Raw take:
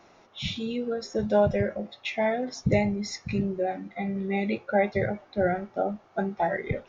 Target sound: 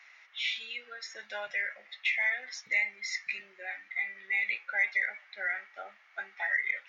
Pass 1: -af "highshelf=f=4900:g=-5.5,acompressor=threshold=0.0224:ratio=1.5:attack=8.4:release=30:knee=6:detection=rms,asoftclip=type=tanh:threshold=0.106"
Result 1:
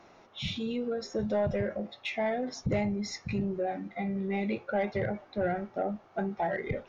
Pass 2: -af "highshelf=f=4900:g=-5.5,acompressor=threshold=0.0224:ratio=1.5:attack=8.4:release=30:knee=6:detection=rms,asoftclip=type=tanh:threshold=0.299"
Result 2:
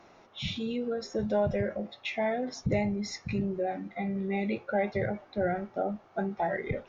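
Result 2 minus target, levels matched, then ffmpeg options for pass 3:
2 kHz band -10.5 dB
-af "highpass=f=2000:t=q:w=4.8,highshelf=f=4900:g=-5.5,acompressor=threshold=0.0224:ratio=1.5:attack=8.4:release=30:knee=6:detection=rms,asoftclip=type=tanh:threshold=0.299"

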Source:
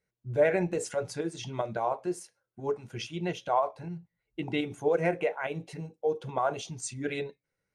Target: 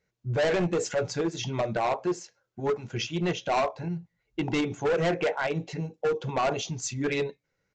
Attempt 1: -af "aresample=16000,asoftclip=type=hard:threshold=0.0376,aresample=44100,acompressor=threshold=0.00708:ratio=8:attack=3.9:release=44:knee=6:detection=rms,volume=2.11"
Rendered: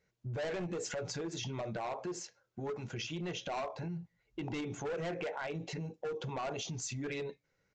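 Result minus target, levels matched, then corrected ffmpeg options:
compression: peak gain reduction +13 dB
-af "aresample=16000,asoftclip=type=hard:threshold=0.0376,aresample=44100,volume=2.11"

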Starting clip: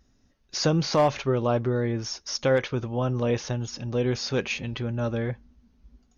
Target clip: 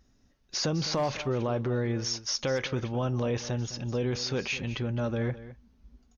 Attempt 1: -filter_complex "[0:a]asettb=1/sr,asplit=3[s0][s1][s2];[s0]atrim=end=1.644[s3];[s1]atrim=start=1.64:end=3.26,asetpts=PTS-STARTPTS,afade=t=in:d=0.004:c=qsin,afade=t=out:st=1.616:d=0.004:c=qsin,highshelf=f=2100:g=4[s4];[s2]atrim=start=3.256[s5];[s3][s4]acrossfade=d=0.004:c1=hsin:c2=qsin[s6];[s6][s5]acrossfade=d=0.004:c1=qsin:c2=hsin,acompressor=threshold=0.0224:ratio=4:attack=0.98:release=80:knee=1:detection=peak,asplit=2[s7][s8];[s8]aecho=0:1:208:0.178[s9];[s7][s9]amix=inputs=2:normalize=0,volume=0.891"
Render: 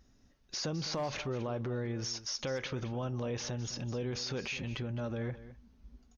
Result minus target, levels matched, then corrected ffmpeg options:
compression: peak gain reduction +7 dB
-filter_complex "[0:a]asettb=1/sr,asplit=3[s0][s1][s2];[s0]atrim=end=1.644[s3];[s1]atrim=start=1.64:end=3.26,asetpts=PTS-STARTPTS,afade=t=in:d=0.004:c=qsin,afade=t=out:st=1.616:d=0.004:c=qsin,highshelf=f=2100:g=4[s4];[s2]atrim=start=3.256[s5];[s3][s4]acrossfade=d=0.004:c1=hsin:c2=qsin[s6];[s6][s5]acrossfade=d=0.004:c1=qsin:c2=hsin,acompressor=threshold=0.0668:ratio=4:attack=0.98:release=80:knee=1:detection=peak,asplit=2[s7][s8];[s8]aecho=0:1:208:0.178[s9];[s7][s9]amix=inputs=2:normalize=0,volume=0.891"

